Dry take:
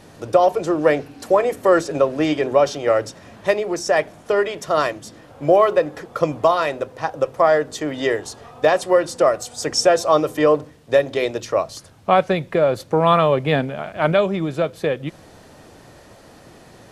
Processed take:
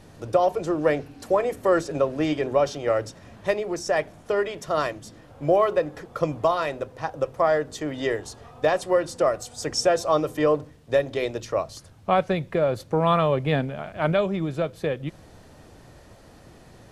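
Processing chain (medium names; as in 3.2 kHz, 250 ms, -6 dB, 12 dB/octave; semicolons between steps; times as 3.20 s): bass shelf 110 Hz +11 dB; trim -6 dB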